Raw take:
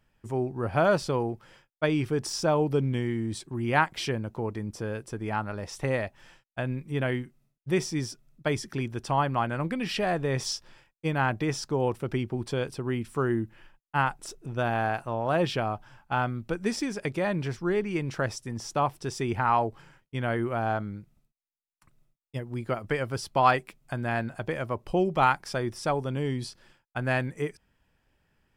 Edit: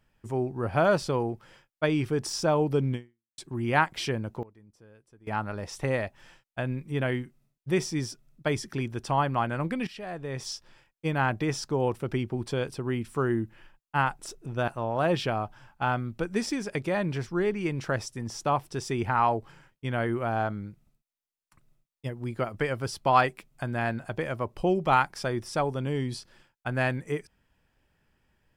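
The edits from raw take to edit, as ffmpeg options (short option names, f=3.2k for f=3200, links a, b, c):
-filter_complex "[0:a]asplit=6[a][b][c][d][e][f];[a]atrim=end=3.38,asetpts=PTS-STARTPTS,afade=t=out:st=2.94:d=0.44:c=exp[g];[b]atrim=start=3.38:end=4.43,asetpts=PTS-STARTPTS,afade=t=in:d=0.004:c=hsin,afade=t=out:st=0.87:d=0.18:c=log:silence=0.0841395[h];[c]atrim=start=4.43:end=5.27,asetpts=PTS-STARTPTS,volume=-21.5dB[i];[d]atrim=start=5.27:end=9.87,asetpts=PTS-STARTPTS,afade=t=in:d=0.18:c=log:silence=0.0841395,afade=t=out:st=4.596:d=0.004:c=hsin:silence=0.16788[j];[e]atrim=start=9.87:end=14.682,asetpts=PTS-STARTPTS,afade=t=in:d=1.27:silence=0.16788[k];[f]atrim=start=14.978[l];[g][h][i][j][k]concat=n=5:v=0:a=1[m];[m][l]acrossfade=d=0.004:c1=hsin:c2=hsin"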